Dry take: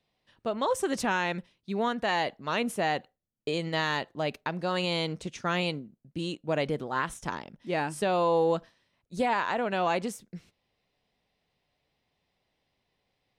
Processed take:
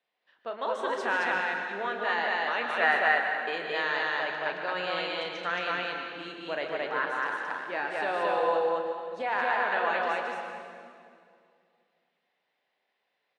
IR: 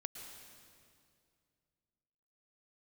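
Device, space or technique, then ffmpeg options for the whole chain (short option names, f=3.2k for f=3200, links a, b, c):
station announcement: -filter_complex "[0:a]asettb=1/sr,asplit=3[a][b][c];[a]atrim=end=2.704[d];[b]atrim=start=2.7:end=3.56,asetpts=PTS-STARTPTS,afade=t=in:d=0.004:c=qsin,afade=t=out:st=0.856:d=0.004:c=qsin,equalizer=f=1.4k:t=o:w=1.4:g=12[e];[c]atrim=start=3.556[f];[d][e]acrossfade=d=0.004:c1=hsin:c2=qsin[g];[g][f]acrossfade=d=0.004:c1=qsin:c2=hsin,highpass=470,lowpass=3.6k,equalizer=f=1.6k:t=o:w=0.52:g=7,aecho=1:1:34.99|148.7|221.6:0.355|0.251|0.891[h];[1:a]atrim=start_sample=2205[i];[h][i]afir=irnorm=-1:irlink=0"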